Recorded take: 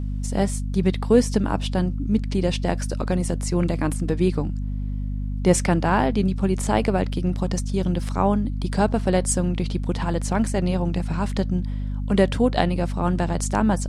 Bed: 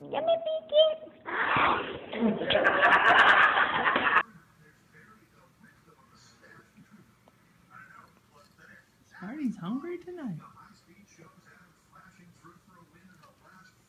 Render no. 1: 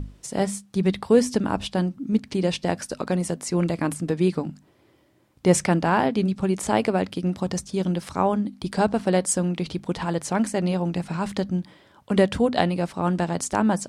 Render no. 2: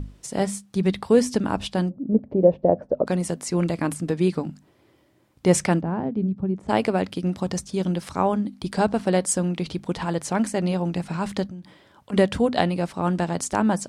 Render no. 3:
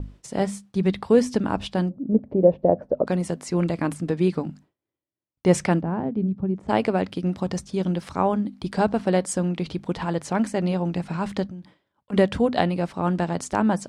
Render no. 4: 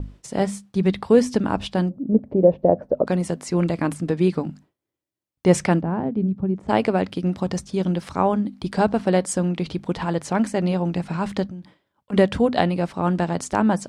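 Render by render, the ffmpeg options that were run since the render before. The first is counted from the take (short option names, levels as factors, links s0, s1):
-af "bandreject=f=50:t=h:w=6,bandreject=f=100:t=h:w=6,bandreject=f=150:t=h:w=6,bandreject=f=200:t=h:w=6,bandreject=f=250:t=h:w=6"
-filter_complex "[0:a]asplit=3[s0][s1][s2];[s0]afade=t=out:st=1.89:d=0.02[s3];[s1]lowpass=f=580:t=q:w=4.1,afade=t=in:st=1.89:d=0.02,afade=t=out:st=3.05:d=0.02[s4];[s2]afade=t=in:st=3.05:d=0.02[s5];[s3][s4][s5]amix=inputs=3:normalize=0,asplit=3[s6][s7][s8];[s6]afade=t=out:st=5.8:d=0.02[s9];[s7]bandpass=f=130:t=q:w=0.56,afade=t=in:st=5.8:d=0.02,afade=t=out:st=6.68:d=0.02[s10];[s8]afade=t=in:st=6.68:d=0.02[s11];[s9][s10][s11]amix=inputs=3:normalize=0,asplit=3[s12][s13][s14];[s12]afade=t=out:st=11.46:d=0.02[s15];[s13]acompressor=threshold=0.02:ratio=8:attack=3.2:release=140:knee=1:detection=peak,afade=t=in:st=11.46:d=0.02,afade=t=out:st=12.12:d=0.02[s16];[s14]afade=t=in:st=12.12:d=0.02[s17];[s15][s16][s17]amix=inputs=3:normalize=0"
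-af "agate=range=0.0224:threshold=0.00891:ratio=3:detection=peak,highshelf=f=6300:g=-10"
-af "volume=1.26,alimiter=limit=0.708:level=0:latency=1"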